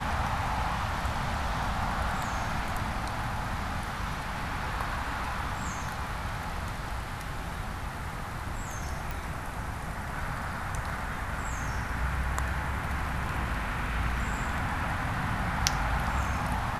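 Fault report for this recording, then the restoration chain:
9.11 s: pop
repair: de-click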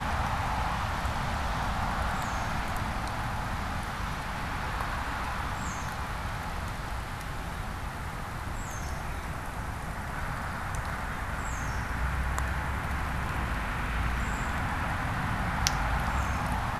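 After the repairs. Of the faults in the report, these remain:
9.11 s: pop

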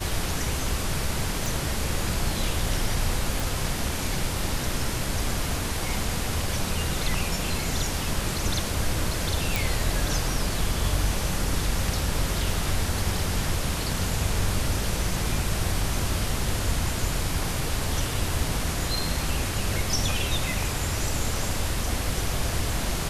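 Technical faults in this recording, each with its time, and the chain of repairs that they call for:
1.46 s: pop
3.40 s: pop
9.56 s: pop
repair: de-click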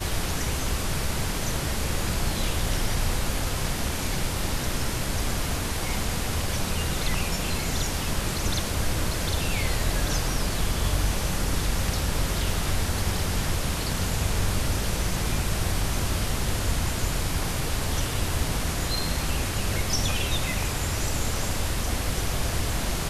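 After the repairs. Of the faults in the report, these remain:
nothing left

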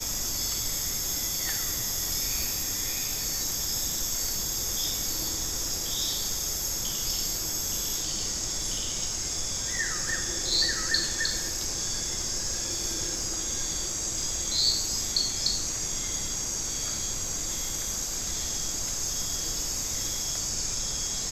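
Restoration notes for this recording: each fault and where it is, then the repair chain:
crackle 29 per s -33 dBFS
2.43 s: pop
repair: de-click

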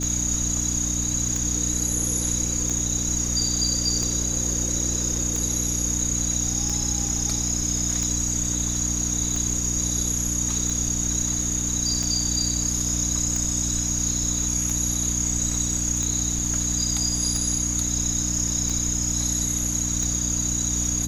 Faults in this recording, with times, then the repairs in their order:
hum 60 Hz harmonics 5 -29 dBFS
tick 45 rpm -15 dBFS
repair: de-click; de-hum 60 Hz, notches 5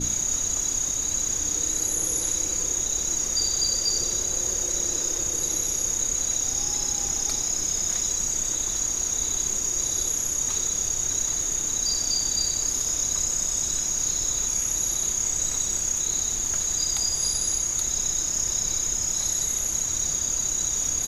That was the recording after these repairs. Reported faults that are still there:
nothing left

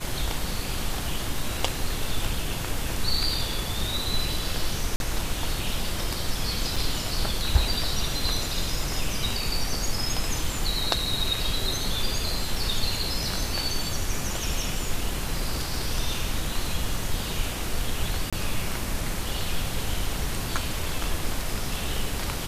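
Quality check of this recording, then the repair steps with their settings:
4.96–5.00 s: dropout 41 ms
6.76 s: dropout 4.5 ms
18.30–18.33 s: dropout 26 ms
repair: interpolate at 4.96 s, 41 ms; interpolate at 6.76 s, 4.5 ms; interpolate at 18.30 s, 26 ms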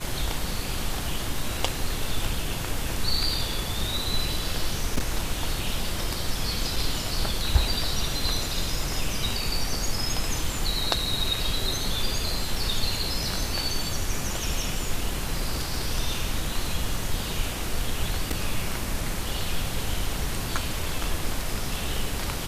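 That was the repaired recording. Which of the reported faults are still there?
nothing left

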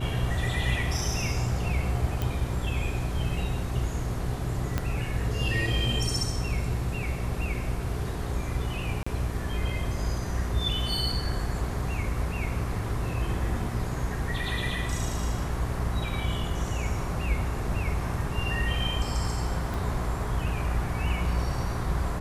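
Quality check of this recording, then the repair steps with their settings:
hum 60 Hz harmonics 7 -33 dBFS
2.22 s: pop
4.78 s: pop -13 dBFS
9.03–9.06 s: dropout 35 ms
19.74 s: pop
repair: de-click; de-hum 60 Hz, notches 7; interpolate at 9.03 s, 35 ms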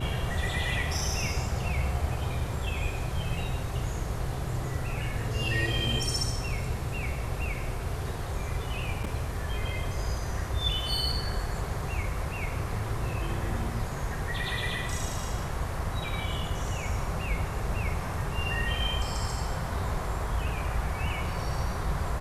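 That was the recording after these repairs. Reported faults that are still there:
4.78 s: pop
19.74 s: pop

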